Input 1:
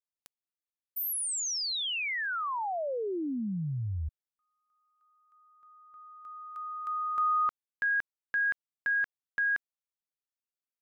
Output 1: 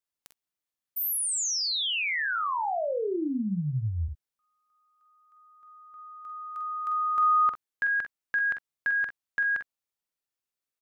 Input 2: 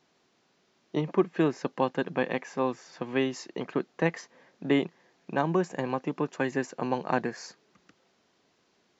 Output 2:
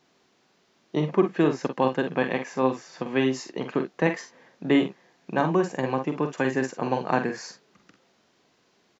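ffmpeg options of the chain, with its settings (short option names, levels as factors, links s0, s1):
-af "aecho=1:1:46|61:0.422|0.2,volume=1.41"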